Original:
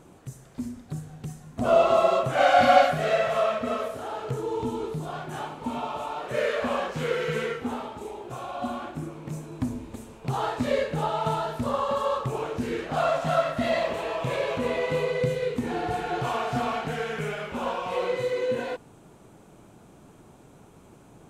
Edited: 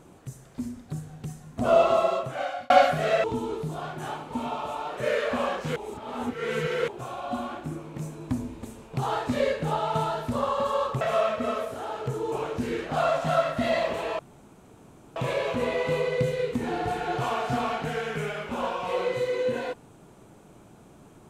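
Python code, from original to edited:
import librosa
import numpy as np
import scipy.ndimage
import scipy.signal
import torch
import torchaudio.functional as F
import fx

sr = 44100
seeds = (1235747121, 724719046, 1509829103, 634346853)

y = fx.edit(x, sr, fx.fade_out_span(start_s=1.8, length_s=0.9),
    fx.move(start_s=3.24, length_s=1.31, to_s=12.32),
    fx.reverse_span(start_s=7.07, length_s=1.12),
    fx.insert_room_tone(at_s=14.19, length_s=0.97), tone=tone)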